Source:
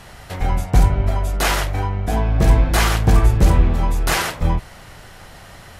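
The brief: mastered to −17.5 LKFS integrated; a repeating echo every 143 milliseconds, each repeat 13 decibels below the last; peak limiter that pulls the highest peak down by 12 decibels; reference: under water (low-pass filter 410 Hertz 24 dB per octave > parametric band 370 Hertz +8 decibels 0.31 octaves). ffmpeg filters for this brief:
ffmpeg -i in.wav -af "alimiter=limit=-15dB:level=0:latency=1,lowpass=frequency=410:width=0.5412,lowpass=frequency=410:width=1.3066,equalizer=frequency=370:width_type=o:width=0.31:gain=8,aecho=1:1:143|286|429:0.224|0.0493|0.0108,volume=8dB" out.wav

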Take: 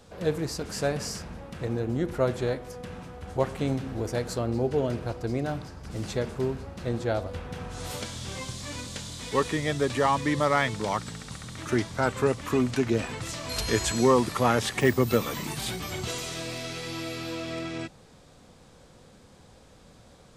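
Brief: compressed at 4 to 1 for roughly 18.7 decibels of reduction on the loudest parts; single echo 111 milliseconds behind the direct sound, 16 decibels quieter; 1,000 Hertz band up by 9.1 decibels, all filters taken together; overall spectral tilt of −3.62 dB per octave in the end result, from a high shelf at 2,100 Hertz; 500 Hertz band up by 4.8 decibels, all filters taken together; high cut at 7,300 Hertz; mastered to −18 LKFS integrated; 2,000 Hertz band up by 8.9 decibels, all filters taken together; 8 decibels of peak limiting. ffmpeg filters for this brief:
ffmpeg -i in.wav -af "lowpass=7300,equalizer=frequency=500:width_type=o:gain=3.5,equalizer=frequency=1000:width_type=o:gain=7.5,equalizer=frequency=2000:width_type=o:gain=4.5,highshelf=frequency=2100:gain=7,acompressor=threshold=-34dB:ratio=4,alimiter=level_in=1.5dB:limit=-24dB:level=0:latency=1,volume=-1.5dB,aecho=1:1:111:0.158,volume=18.5dB" out.wav

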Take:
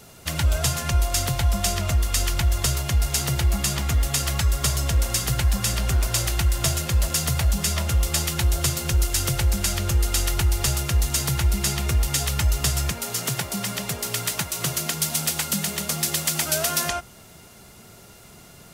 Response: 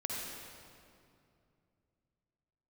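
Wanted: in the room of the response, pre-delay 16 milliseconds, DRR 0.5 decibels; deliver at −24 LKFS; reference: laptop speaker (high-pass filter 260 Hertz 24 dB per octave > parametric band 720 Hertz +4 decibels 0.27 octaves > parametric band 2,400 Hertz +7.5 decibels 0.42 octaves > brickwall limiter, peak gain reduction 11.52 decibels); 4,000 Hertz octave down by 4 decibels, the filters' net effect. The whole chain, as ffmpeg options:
-filter_complex "[0:a]equalizer=frequency=4000:width_type=o:gain=-7,asplit=2[link_01][link_02];[1:a]atrim=start_sample=2205,adelay=16[link_03];[link_02][link_03]afir=irnorm=-1:irlink=0,volume=-3.5dB[link_04];[link_01][link_04]amix=inputs=2:normalize=0,highpass=frequency=260:width=0.5412,highpass=frequency=260:width=1.3066,equalizer=frequency=720:width_type=o:width=0.27:gain=4,equalizer=frequency=2400:width_type=o:width=0.42:gain=7.5,volume=5dB,alimiter=limit=-16dB:level=0:latency=1"

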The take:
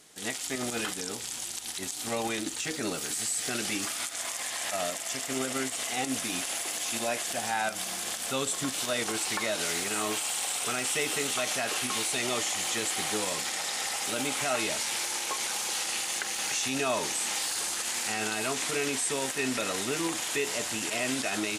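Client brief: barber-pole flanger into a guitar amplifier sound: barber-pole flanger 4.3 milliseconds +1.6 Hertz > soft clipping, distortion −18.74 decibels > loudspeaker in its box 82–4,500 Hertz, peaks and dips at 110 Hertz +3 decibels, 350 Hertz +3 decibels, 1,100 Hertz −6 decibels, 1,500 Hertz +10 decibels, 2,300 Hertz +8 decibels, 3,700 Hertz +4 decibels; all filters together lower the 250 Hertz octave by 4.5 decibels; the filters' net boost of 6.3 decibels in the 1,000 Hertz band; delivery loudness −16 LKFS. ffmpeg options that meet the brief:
ffmpeg -i in.wav -filter_complex "[0:a]equalizer=frequency=250:width_type=o:gain=-8,equalizer=frequency=1000:width_type=o:gain=9,asplit=2[link_01][link_02];[link_02]adelay=4.3,afreqshift=1.6[link_03];[link_01][link_03]amix=inputs=2:normalize=1,asoftclip=threshold=-24dB,highpass=82,equalizer=frequency=110:width_type=q:width=4:gain=3,equalizer=frequency=350:width_type=q:width=4:gain=3,equalizer=frequency=1100:width_type=q:width=4:gain=-6,equalizer=frequency=1500:width_type=q:width=4:gain=10,equalizer=frequency=2300:width_type=q:width=4:gain=8,equalizer=frequency=3700:width_type=q:width=4:gain=4,lowpass=frequency=4500:width=0.5412,lowpass=frequency=4500:width=1.3066,volume=15dB" out.wav

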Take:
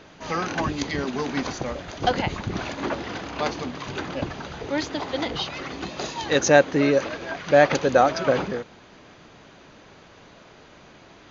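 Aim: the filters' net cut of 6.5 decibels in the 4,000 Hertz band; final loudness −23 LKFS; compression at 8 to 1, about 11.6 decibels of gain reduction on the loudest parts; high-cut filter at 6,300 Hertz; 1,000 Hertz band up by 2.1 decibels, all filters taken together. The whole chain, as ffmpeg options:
ffmpeg -i in.wav -af "lowpass=6300,equalizer=frequency=1000:width_type=o:gain=3.5,equalizer=frequency=4000:width_type=o:gain=-8,acompressor=threshold=-21dB:ratio=8,volume=6dB" out.wav

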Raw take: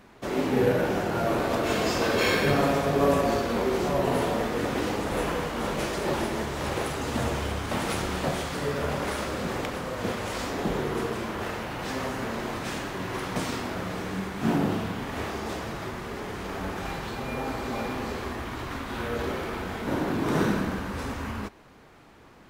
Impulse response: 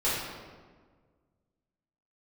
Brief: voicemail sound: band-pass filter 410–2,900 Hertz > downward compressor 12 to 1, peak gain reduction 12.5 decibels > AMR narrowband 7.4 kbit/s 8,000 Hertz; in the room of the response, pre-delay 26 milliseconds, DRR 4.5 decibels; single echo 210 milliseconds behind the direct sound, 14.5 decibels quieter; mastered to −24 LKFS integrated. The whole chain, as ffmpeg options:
-filter_complex "[0:a]aecho=1:1:210:0.188,asplit=2[link_01][link_02];[1:a]atrim=start_sample=2205,adelay=26[link_03];[link_02][link_03]afir=irnorm=-1:irlink=0,volume=-15.5dB[link_04];[link_01][link_04]amix=inputs=2:normalize=0,highpass=410,lowpass=2900,acompressor=threshold=-29dB:ratio=12,volume=12.5dB" -ar 8000 -c:a libopencore_amrnb -b:a 7400

